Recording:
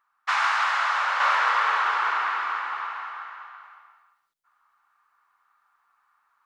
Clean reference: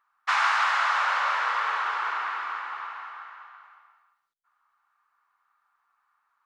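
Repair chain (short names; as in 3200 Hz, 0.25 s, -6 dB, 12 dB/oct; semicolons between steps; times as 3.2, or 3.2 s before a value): clip repair -12.5 dBFS; gain correction -4.5 dB, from 1.2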